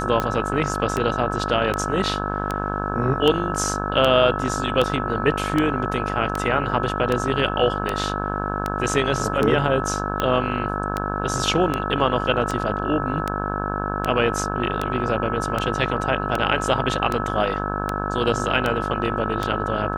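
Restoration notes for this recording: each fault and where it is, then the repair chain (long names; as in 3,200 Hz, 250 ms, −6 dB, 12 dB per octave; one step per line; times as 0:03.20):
mains buzz 50 Hz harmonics 34 −27 dBFS
scratch tick 78 rpm −9 dBFS
whistle 1,300 Hz −29 dBFS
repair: click removal
notch filter 1,300 Hz, Q 30
hum removal 50 Hz, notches 34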